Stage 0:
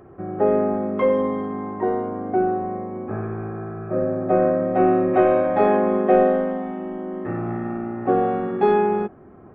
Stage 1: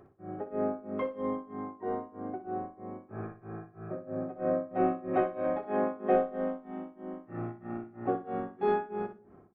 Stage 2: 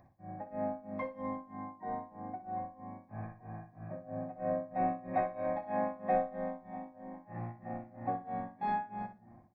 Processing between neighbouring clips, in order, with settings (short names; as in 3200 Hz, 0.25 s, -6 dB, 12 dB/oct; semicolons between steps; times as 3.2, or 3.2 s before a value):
tremolo 3.1 Hz, depth 98%; on a send: feedback echo 61 ms, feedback 20%, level -11 dB; on the sum: shoebox room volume 2000 m³, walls furnished, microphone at 0.32 m; gain -8.5 dB
fixed phaser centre 2000 Hz, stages 8; outdoor echo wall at 270 m, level -15 dB